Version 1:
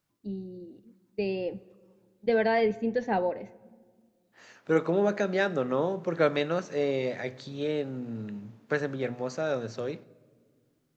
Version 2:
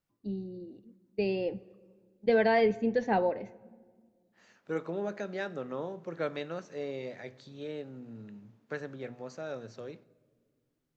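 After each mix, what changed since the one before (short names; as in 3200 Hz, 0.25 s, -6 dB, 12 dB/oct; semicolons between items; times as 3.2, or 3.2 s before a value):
second voice -9.5 dB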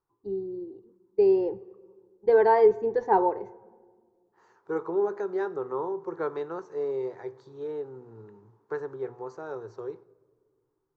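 master: add EQ curve 120 Hz 0 dB, 240 Hz -12 dB, 390 Hz +13 dB, 600 Hz -6 dB, 920 Hz +13 dB, 2600 Hz -14 dB, 5500 Hz -7 dB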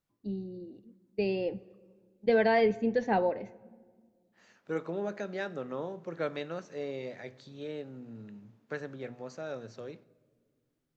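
master: add EQ curve 120 Hz 0 dB, 240 Hz +12 dB, 390 Hz -13 dB, 600 Hz +6 dB, 920 Hz -13 dB, 2600 Hz +14 dB, 5500 Hz +7 dB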